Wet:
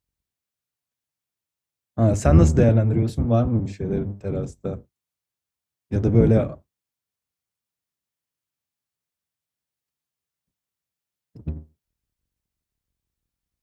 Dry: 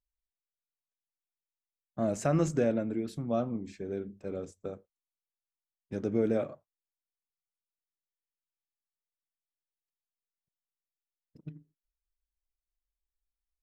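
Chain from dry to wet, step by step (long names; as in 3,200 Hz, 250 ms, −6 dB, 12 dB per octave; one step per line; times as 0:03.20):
sub-octave generator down 1 octave, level +4 dB
high-pass filter 76 Hz
low-shelf EQ 100 Hz +8.5 dB
level +7.5 dB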